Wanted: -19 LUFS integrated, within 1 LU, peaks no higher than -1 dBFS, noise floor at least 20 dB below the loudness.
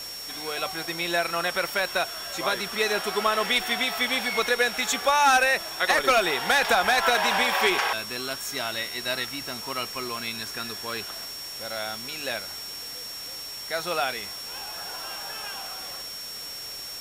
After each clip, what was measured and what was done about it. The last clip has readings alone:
steady tone 5500 Hz; tone level -36 dBFS; noise floor -37 dBFS; noise floor target -46 dBFS; loudness -26.0 LUFS; peak -8.5 dBFS; loudness target -19.0 LUFS
-> notch 5500 Hz, Q 30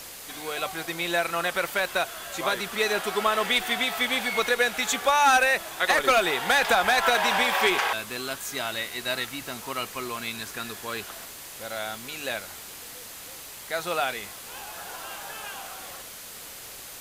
steady tone none; noise floor -42 dBFS; noise floor target -46 dBFS
-> denoiser 6 dB, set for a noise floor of -42 dBFS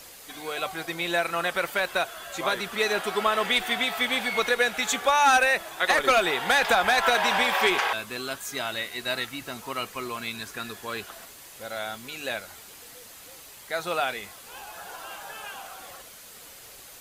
noise floor -47 dBFS; loudness -25.0 LUFS; peak -8.5 dBFS; loudness target -19.0 LUFS
-> gain +6 dB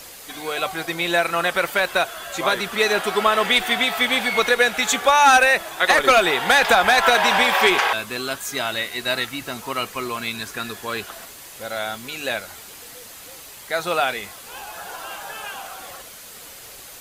loudness -19.0 LUFS; peak -2.5 dBFS; noise floor -41 dBFS

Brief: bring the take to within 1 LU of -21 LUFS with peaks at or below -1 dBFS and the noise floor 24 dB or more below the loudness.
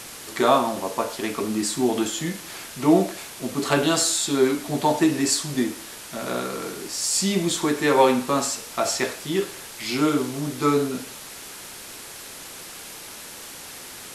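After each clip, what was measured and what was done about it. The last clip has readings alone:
noise floor -40 dBFS; noise floor target -47 dBFS; loudness -23.0 LUFS; peak -3.5 dBFS; loudness target -21.0 LUFS
-> denoiser 7 dB, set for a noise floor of -40 dBFS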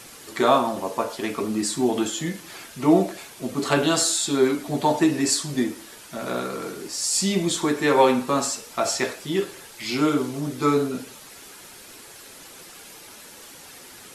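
noise floor -45 dBFS; noise floor target -47 dBFS
-> denoiser 6 dB, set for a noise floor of -45 dBFS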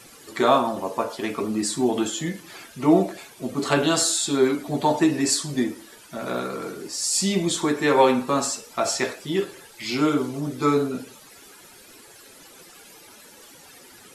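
noise floor -48 dBFS; loudness -23.0 LUFS; peak -4.0 dBFS; loudness target -21.0 LUFS
-> gain +2 dB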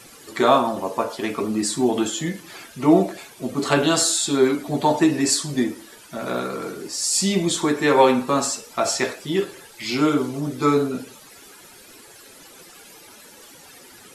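loudness -21.0 LUFS; peak -2.0 dBFS; noise floor -46 dBFS

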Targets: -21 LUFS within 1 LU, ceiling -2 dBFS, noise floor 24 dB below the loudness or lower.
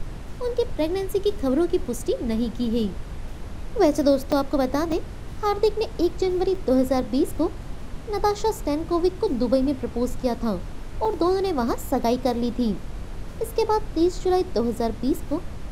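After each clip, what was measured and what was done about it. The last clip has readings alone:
dropouts 4; longest dropout 3.7 ms; noise floor -36 dBFS; noise floor target -49 dBFS; loudness -24.5 LUFS; peak -7.5 dBFS; loudness target -21.0 LUFS
-> interpolate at 4.32/4.92/6.55/11.05, 3.7 ms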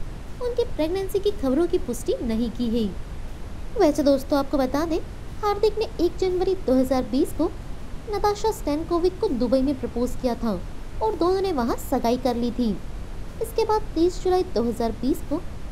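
dropouts 0; noise floor -36 dBFS; noise floor target -49 dBFS
-> noise print and reduce 13 dB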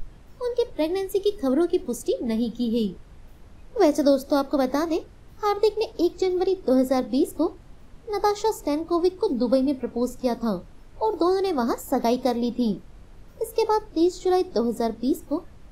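noise floor -48 dBFS; noise floor target -49 dBFS
-> noise print and reduce 6 dB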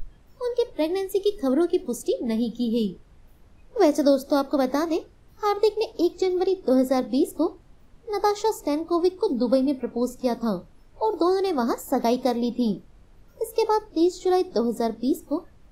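noise floor -54 dBFS; loudness -24.5 LUFS; peak -7.5 dBFS; loudness target -21.0 LUFS
-> gain +3.5 dB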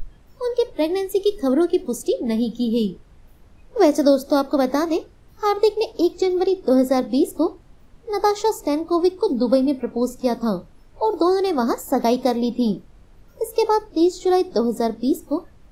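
loudness -21.0 LUFS; peak -4.0 dBFS; noise floor -50 dBFS

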